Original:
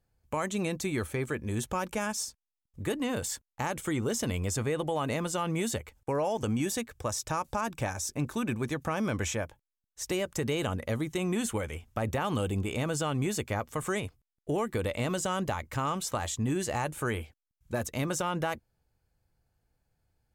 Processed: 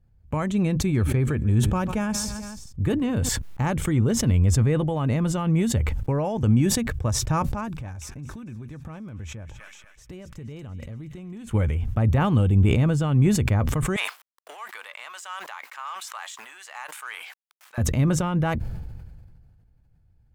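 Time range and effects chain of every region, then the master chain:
0.80–3.29 s: band-stop 2 kHz, Q 20 + feedback delay 144 ms, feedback 42%, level -20.5 dB
7.44–11.51 s: compression 5:1, threshold -46 dBFS + feedback echo behind a high-pass 236 ms, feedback 59%, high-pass 2 kHz, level -9 dB
13.96–17.78 s: companding laws mixed up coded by A + high-pass 980 Hz 24 dB/octave
whole clip: tone controls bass +15 dB, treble -9 dB; decay stretcher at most 30 dB/s

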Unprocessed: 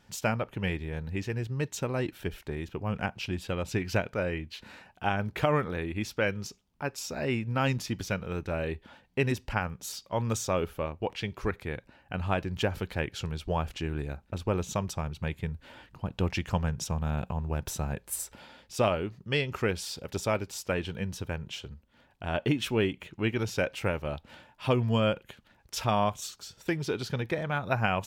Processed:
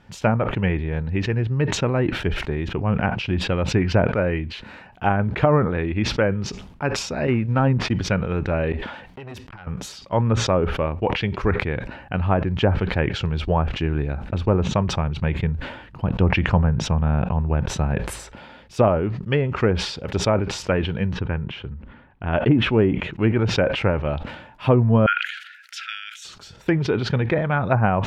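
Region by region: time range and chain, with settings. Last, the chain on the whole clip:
7.27–7.93 s: CVSD coder 64 kbps + expander -32 dBFS
8.72–9.67 s: bass shelf 330 Hz -8 dB + compression 4:1, threshold -39 dBFS + transformer saturation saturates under 1.4 kHz
21.13–22.33 s: low-pass 2.2 kHz + peaking EQ 630 Hz -5.5 dB 0.66 oct
25.06–26.25 s: upward compressor, threshold -36 dBFS + brick-wall FIR high-pass 1.3 kHz
whole clip: low-pass that closes with the level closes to 1.2 kHz, closed at -23 dBFS; tone controls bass +2 dB, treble -13 dB; decay stretcher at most 64 dB/s; trim +8.5 dB

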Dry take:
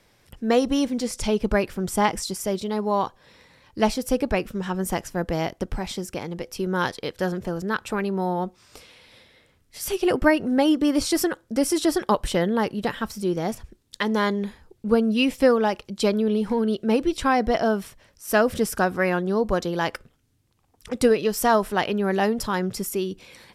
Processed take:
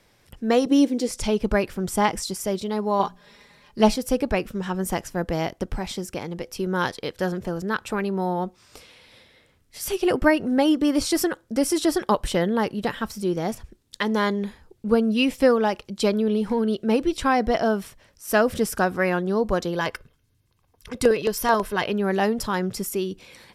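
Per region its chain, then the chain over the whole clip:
0.66–1.09 s: resonant high-pass 330 Hz, resonance Q 3.3 + peaking EQ 1.2 kHz -6 dB 1.3 oct
2.99–3.96 s: hum notches 60/120/180/240/300 Hz + comb 4.9 ms, depth 77%
19.75–21.87 s: comb 1.9 ms, depth 36% + LFO notch square 9.2 Hz 560–7800 Hz
whole clip: none

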